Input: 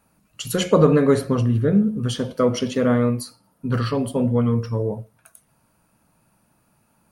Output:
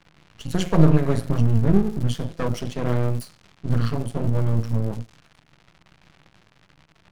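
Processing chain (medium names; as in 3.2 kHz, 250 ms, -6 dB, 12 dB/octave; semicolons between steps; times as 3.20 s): crackle 380 per s -31 dBFS; resonant low shelf 210 Hz +7 dB, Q 3; level-controlled noise filter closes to 3 kHz, open at -14 dBFS; half-wave rectifier; trim -2.5 dB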